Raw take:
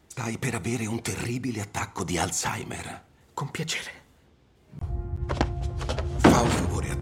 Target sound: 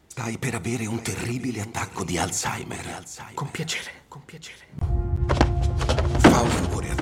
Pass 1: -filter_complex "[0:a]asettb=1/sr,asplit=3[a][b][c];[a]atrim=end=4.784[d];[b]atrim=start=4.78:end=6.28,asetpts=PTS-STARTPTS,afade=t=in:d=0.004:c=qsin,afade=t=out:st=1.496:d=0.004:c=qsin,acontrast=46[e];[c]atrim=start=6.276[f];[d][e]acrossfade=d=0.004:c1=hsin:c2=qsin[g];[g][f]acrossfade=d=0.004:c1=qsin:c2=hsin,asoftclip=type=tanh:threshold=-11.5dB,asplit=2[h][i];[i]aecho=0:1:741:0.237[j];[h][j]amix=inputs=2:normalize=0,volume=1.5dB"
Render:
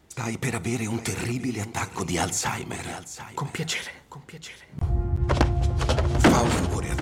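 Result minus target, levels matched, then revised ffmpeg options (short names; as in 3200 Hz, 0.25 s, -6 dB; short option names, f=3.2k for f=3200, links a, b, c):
soft clip: distortion +10 dB
-filter_complex "[0:a]asettb=1/sr,asplit=3[a][b][c];[a]atrim=end=4.784[d];[b]atrim=start=4.78:end=6.28,asetpts=PTS-STARTPTS,afade=t=in:d=0.004:c=qsin,afade=t=out:st=1.496:d=0.004:c=qsin,acontrast=46[e];[c]atrim=start=6.276[f];[d][e]acrossfade=d=0.004:c1=hsin:c2=qsin[g];[g][f]acrossfade=d=0.004:c1=qsin:c2=hsin,asoftclip=type=tanh:threshold=-3dB,asplit=2[h][i];[i]aecho=0:1:741:0.237[j];[h][j]amix=inputs=2:normalize=0,volume=1.5dB"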